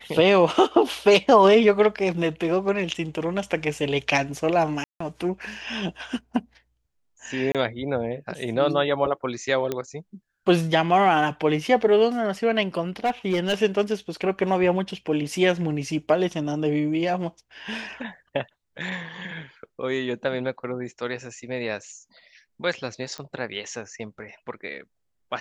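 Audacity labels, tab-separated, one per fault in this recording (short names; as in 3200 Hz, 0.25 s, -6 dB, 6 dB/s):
4.840000	5.000000	gap 0.164 s
7.520000	7.550000	gap 27 ms
9.720000	9.720000	pop -13 dBFS
13.040000	13.540000	clipped -17.5 dBFS
23.180000	23.180000	pop -19 dBFS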